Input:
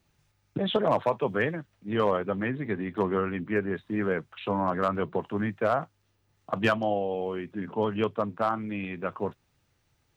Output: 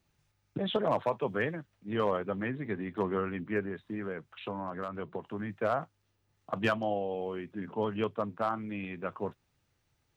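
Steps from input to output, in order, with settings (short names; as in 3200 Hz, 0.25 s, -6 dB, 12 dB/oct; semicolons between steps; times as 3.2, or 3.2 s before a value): 3.65–5.5 compressor 5:1, threshold -29 dBFS, peak gain reduction 8 dB; gain -4.5 dB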